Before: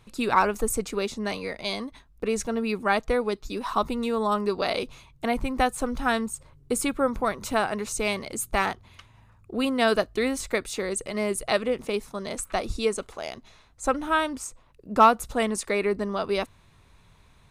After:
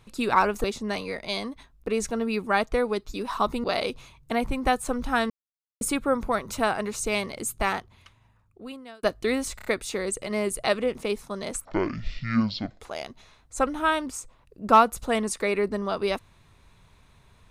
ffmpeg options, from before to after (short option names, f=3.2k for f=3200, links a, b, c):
-filter_complex "[0:a]asplit=11[a][b][c][d][e][f][g][h][i][j][k];[a]atrim=end=0.642[l];[b]atrim=start=0.998:end=4.002[m];[c]atrim=start=4.568:end=6.23,asetpts=PTS-STARTPTS,afade=t=out:st=1.658:d=0.004:c=hsin[n];[d]atrim=start=6.23:end=6.74,asetpts=PTS-STARTPTS,volume=0[o];[e]atrim=start=6.74:end=9.96,asetpts=PTS-STARTPTS,afade=t=in:d=0.004:c=hsin,afade=t=out:st=1.63:d=1.59[p];[f]atrim=start=9.96:end=10.522,asetpts=PTS-STARTPTS,afade=t=in:d=0.004:c=hsin[q];[g]atrim=start=10.488:end=10.522[r];[h]atrim=start=10.488:end=10.522[s];[i]atrim=start=10.488:end=12.494[t];[j]atrim=start=12.49:end=13.08,asetpts=PTS-STARTPTS,asetrate=22491,aresample=44100[u];[k]atrim=start=13.076[v];[l][m]acrossfade=d=0.004:c1=hsin:c2=hsin[w];[n][o][p][q]concat=n=4:v=0:a=1[x];[w][x]acrossfade=d=0.004:c1=hsin:c2=hsin[y];[y][r]acrossfade=d=0.004:c1=hsin:c2=hsin[z];[z][s]acrossfade=d=0.004:c1=hsin:c2=hsin[aa];[aa][t]acrossfade=d=0.004:c1=hsin:c2=hsin[ab];[ab][u]acrossfade=d=0.004:c1=hsin:c2=hsin[ac];[ac][v]acrossfade=d=0.004:c1=hsin:c2=hsin"